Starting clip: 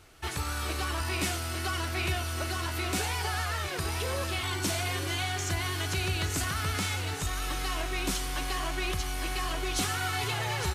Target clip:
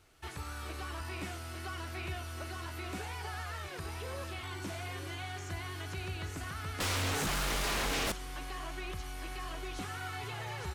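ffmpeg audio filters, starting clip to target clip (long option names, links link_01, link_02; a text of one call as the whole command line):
ffmpeg -i in.wav -filter_complex "[0:a]acrossover=split=2600[link_01][link_02];[link_02]acompressor=threshold=-40dB:ratio=4:attack=1:release=60[link_03];[link_01][link_03]amix=inputs=2:normalize=0,asettb=1/sr,asplit=3[link_04][link_05][link_06];[link_04]atrim=end=6.804[link_07];[link_05]atrim=start=6.8:end=8.12,asetpts=PTS-STARTPTS,afade=type=in:duration=0.004:curve=qsin,afade=type=out:start_time=1.316:duration=0.004:curve=qsin,aeval=exprs='0.0891*sin(PI/2*4.47*val(0)/0.0891)':channel_layout=same[link_08];[link_06]atrim=start=8.116[link_09];[link_07][link_08]acrossfade=duration=0.004:curve1=hsin:curve2=qsin[link_10];[link_10][link_09]acrossfade=duration=0.004:curve1=qsin:curve2=hsin,volume=-8.5dB" out.wav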